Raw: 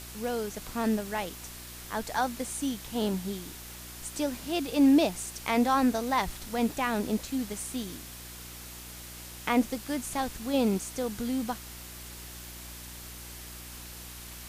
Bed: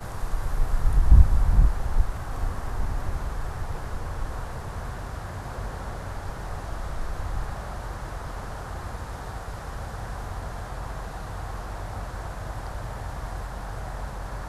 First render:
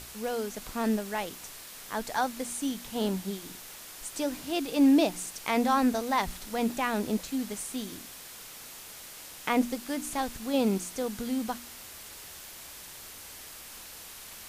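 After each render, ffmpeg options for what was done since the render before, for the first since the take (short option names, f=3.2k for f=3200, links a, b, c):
-af "bandreject=f=60:t=h:w=4,bandreject=f=120:t=h:w=4,bandreject=f=180:t=h:w=4,bandreject=f=240:t=h:w=4,bandreject=f=300:t=h:w=4,bandreject=f=360:t=h:w=4"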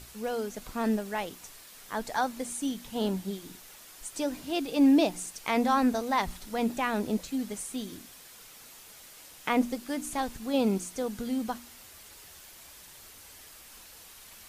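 -af "afftdn=nr=6:nf=-46"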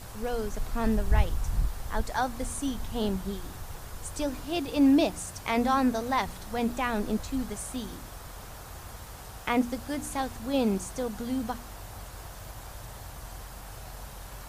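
-filter_complex "[1:a]volume=-9.5dB[a];[0:a][a]amix=inputs=2:normalize=0"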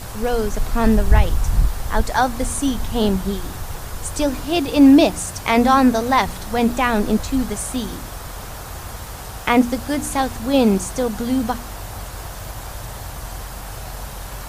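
-af "volume=11dB,alimiter=limit=-2dB:level=0:latency=1"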